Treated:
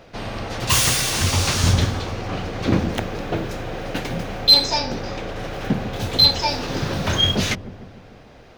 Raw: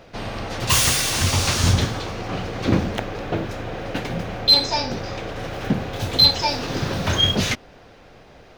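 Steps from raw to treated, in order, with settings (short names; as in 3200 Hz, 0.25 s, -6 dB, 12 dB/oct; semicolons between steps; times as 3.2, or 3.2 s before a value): 2.89–4.79 high shelf 5900 Hz +6.5 dB; on a send: dark delay 0.147 s, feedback 60%, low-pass 570 Hz, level -11 dB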